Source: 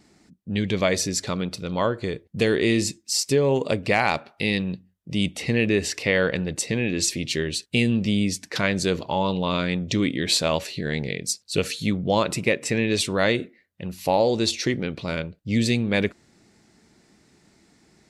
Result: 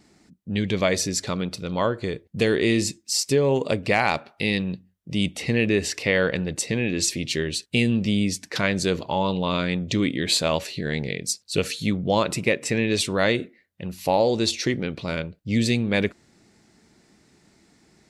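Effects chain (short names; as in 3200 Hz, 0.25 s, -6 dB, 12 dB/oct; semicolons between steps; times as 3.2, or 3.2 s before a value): 9–10.46 notch 5600 Hz, Q 11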